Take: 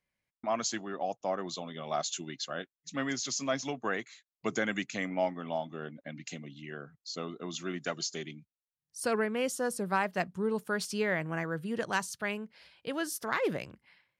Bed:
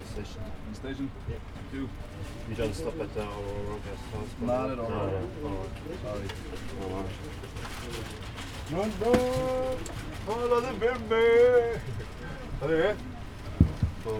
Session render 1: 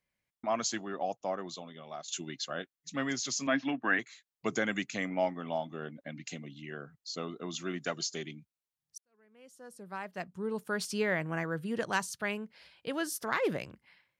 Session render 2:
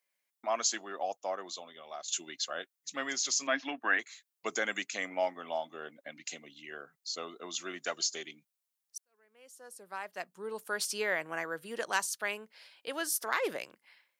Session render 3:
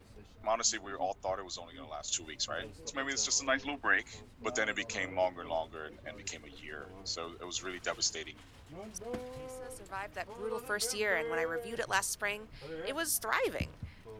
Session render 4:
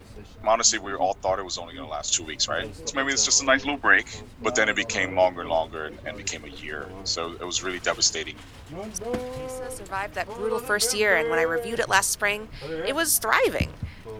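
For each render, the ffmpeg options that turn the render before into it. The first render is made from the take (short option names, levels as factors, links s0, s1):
-filter_complex "[0:a]asettb=1/sr,asplit=3[s0][s1][s2];[s0]atrim=end=3.474[s3];[s1]atrim=start=3.47:end=3.99,asetpts=PTS-STARTPTS,afade=t=in:d=0.004:c=qsin,afade=t=out:st=0.516:d=0.004:c=qsin,highpass=160,equalizer=f=280:t=q:w=4:g=9,equalizer=f=450:t=q:w=4:g=-9,equalizer=f=1700:t=q:w=4:g=10,equalizer=f=2700:t=q:w=4:g=5,lowpass=f=3400:w=0.5412,lowpass=f=3400:w=1.3066[s4];[s2]atrim=start=3.986[s5];[s3][s4]acrossfade=d=0.004:c1=hsin:c2=qsin[s6];[s6][s5]acrossfade=d=0.004:c1=qsin:c2=hsin,asplit=3[s7][s8][s9];[s7]atrim=end=2.08,asetpts=PTS-STARTPTS,afade=t=out:st=1.04:d=1.04:silence=0.211349[s10];[s8]atrim=start=2.08:end=8.98,asetpts=PTS-STARTPTS,afade=t=in:d=0.004:c=hsin:silence=0.211349,afade=t=out:st=6.896:d=0.004:c=hsin[s11];[s9]atrim=start=8.98,asetpts=PTS-STARTPTS,afade=t=in:d=1.9:c=qua[s12];[s10][s11][s12]concat=n=3:v=0:a=1"
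-af "highpass=450,highshelf=f=6100:g=8.5"
-filter_complex "[1:a]volume=0.141[s0];[0:a][s0]amix=inputs=2:normalize=0"
-af "volume=3.55"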